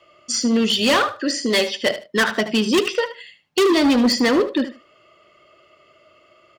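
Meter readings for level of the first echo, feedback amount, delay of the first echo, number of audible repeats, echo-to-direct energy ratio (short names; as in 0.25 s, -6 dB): -12.5 dB, 19%, 75 ms, 2, -12.5 dB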